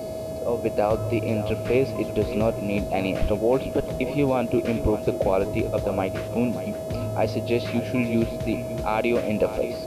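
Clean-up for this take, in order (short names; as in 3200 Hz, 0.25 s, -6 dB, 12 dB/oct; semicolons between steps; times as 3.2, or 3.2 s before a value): de-hum 424.2 Hz, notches 31; notch 640 Hz, Q 30; noise print and reduce 30 dB; inverse comb 0.576 s -13 dB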